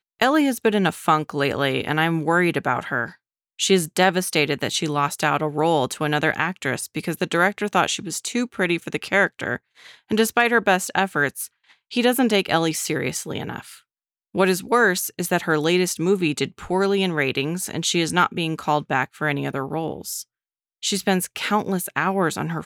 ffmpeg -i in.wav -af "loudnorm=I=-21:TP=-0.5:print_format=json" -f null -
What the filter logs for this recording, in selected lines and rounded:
"input_i" : "-22.0",
"input_tp" : "-4.4",
"input_lra" : "3.4",
"input_thresh" : "-32.2",